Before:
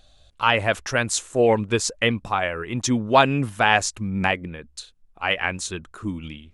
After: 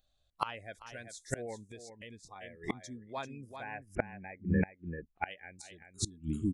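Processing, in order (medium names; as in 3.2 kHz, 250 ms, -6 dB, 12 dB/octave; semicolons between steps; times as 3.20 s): 3.56–5.26 s: steep low-pass 2.6 kHz 48 dB/octave; spectral noise reduction 26 dB; delay 390 ms -8 dB; inverted gate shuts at -22 dBFS, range -29 dB; 1.71–2.36 s: compression 3:1, threshold -51 dBFS, peak gain reduction 6 dB; trim +4.5 dB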